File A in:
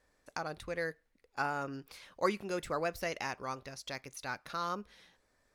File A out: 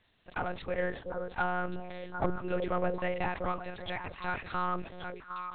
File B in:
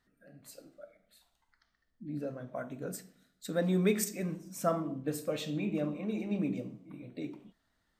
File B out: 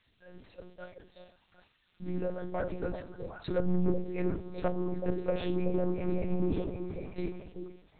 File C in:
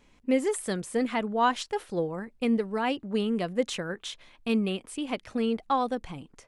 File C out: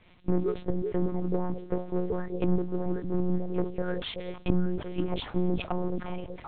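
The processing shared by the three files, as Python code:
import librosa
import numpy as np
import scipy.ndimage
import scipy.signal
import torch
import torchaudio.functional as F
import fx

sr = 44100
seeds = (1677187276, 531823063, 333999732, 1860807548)

p1 = fx.env_lowpass_down(x, sr, base_hz=320.0, full_db=-25.5)
p2 = fx.leveller(p1, sr, passes=1)
p3 = 10.0 ** (-36.5 / 20.0) * np.tanh(p2 / 10.0 ** (-36.5 / 20.0))
p4 = p2 + (p3 * 10.0 ** (-11.0 / 20.0))
p5 = fx.dmg_noise_colour(p4, sr, seeds[0], colour='violet', level_db=-52.0)
p6 = fx.echo_stepped(p5, sr, ms=377, hz=430.0, octaves=1.4, feedback_pct=70, wet_db=-3.5)
p7 = fx.lpc_monotone(p6, sr, seeds[1], pitch_hz=180.0, order=8)
y = fx.sustainer(p7, sr, db_per_s=130.0)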